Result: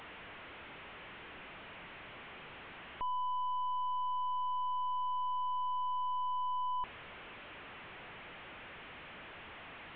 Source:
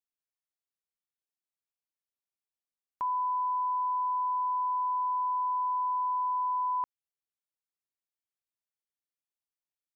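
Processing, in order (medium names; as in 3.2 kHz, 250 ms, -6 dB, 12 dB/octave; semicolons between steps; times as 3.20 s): one-bit delta coder 16 kbps, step -44 dBFS; trim +1 dB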